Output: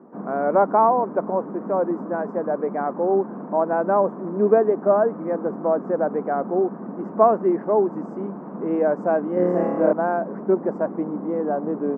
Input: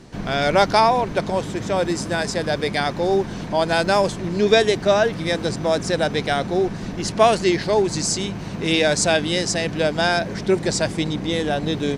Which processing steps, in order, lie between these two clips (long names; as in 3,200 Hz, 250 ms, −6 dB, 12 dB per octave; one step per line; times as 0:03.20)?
elliptic band-pass filter 210–1,200 Hz, stop band 50 dB
0:09.34–0:09.93: flutter between parallel walls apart 4.8 metres, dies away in 1.2 s